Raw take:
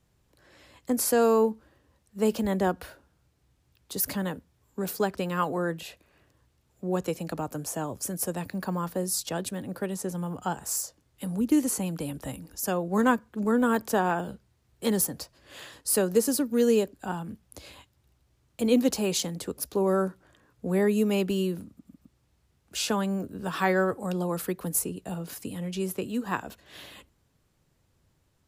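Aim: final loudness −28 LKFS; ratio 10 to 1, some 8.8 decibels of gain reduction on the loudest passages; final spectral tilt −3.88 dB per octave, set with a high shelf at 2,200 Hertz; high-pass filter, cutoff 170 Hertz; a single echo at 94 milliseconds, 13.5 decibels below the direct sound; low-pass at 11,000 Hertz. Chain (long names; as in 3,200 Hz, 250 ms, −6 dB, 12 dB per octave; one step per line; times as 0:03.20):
high-pass filter 170 Hz
low-pass filter 11,000 Hz
high-shelf EQ 2,200 Hz +6 dB
downward compressor 10 to 1, threshold −26 dBFS
single-tap delay 94 ms −13.5 dB
level +4 dB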